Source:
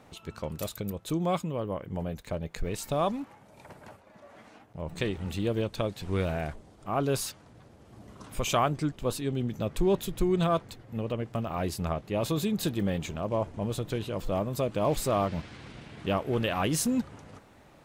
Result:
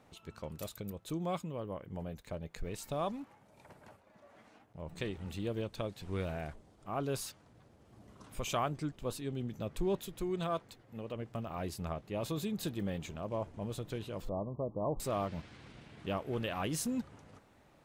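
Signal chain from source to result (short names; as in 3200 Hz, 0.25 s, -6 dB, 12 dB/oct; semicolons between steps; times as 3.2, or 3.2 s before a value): 9.97–11.16 low shelf 170 Hz -7.5 dB; 14.29–15 steep low-pass 1100 Hz 72 dB/oct; gain -8 dB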